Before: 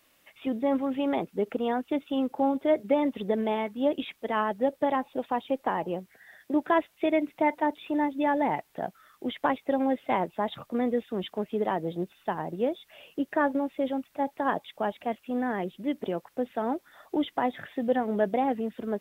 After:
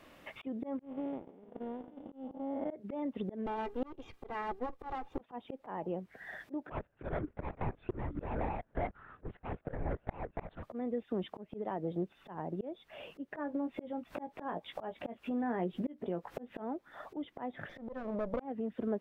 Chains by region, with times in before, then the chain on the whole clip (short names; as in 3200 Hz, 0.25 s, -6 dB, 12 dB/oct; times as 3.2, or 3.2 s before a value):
0.79–2.71 time blur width 0.427 s + gate -31 dBFS, range -34 dB
3.46–5.21 minimum comb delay 2.5 ms + chopper 1.5 Hz, depth 60%, duty 70%
6.71–10.63 median filter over 41 samples + bell 1500 Hz +10.5 dB 1.7 oct + LPC vocoder at 8 kHz whisper
13.36–16.6 upward compressor, threshold -31 dBFS + doubler 17 ms -8 dB
17.69–18.4 minimum comb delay 0.54 ms + bell 570 Hz +14 dB 0.36 oct + compressor 1.5:1, threshold -39 dBFS
whole clip: auto swell 0.731 s; LPF 1000 Hz 6 dB/oct; compressor 2.5:1, threshold -51 dBFS; gain +13 dB